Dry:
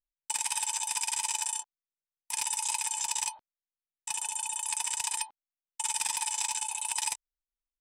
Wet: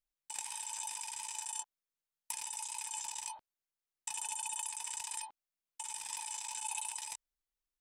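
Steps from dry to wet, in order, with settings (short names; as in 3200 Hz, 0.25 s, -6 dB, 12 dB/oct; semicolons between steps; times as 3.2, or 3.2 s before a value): negative-ratio compressor -37 dBFS, ratio -1; gain -4.5 dB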